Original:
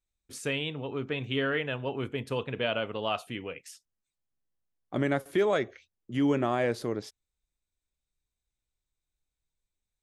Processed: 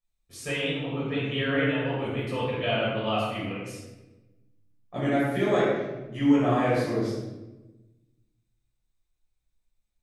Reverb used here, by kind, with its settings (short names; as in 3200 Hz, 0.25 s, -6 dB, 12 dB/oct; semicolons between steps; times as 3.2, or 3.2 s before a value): shoebox room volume 570 m³, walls mixed, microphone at 6 m; gain -9 dB